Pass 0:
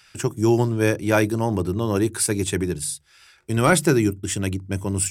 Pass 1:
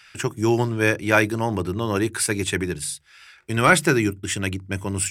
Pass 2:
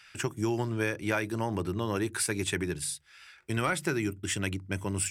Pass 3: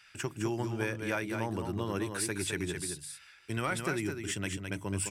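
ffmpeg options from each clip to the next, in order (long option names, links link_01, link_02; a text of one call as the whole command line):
ffmpeg -i in.wav -af "equalizer=frequency=2000:width=0.65:gain=9,volume=-2.5dB" out.wav
ffmpeg -i in.wav -af "acompressor=threshold=-20dB:ratio=6,volume=-5dB" out.wav
ffmpeg -i in.wav -af "aecho=1:1:211:0.501,volume=-4dB" out.wav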